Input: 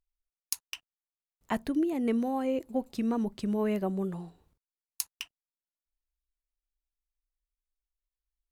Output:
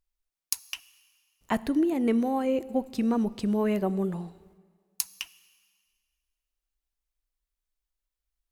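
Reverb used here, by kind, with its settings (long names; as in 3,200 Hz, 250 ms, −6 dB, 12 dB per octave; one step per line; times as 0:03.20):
dense smooth reverb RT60 1.8 s, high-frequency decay 1×, DRR 18.5 dB
level +3.5 dB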